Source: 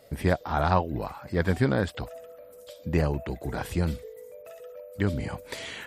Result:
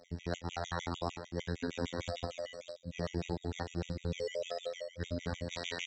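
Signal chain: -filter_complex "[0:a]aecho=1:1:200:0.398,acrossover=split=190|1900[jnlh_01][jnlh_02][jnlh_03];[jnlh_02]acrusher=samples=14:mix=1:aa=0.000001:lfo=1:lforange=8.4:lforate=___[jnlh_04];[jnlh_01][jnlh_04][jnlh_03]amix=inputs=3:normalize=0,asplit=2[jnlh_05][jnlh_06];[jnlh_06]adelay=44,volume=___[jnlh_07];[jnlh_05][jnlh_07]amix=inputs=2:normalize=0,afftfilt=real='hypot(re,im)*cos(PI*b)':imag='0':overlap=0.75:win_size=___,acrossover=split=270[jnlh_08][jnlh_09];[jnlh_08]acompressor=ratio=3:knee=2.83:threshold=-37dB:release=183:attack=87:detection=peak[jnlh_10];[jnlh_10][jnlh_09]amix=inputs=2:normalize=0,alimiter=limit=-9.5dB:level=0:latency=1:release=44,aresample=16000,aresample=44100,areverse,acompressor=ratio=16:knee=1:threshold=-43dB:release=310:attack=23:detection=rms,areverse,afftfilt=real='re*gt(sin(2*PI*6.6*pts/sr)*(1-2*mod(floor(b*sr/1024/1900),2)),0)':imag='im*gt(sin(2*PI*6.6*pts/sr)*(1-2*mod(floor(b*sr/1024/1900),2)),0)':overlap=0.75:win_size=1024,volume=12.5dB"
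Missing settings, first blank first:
1.7, -12.5dB, 2048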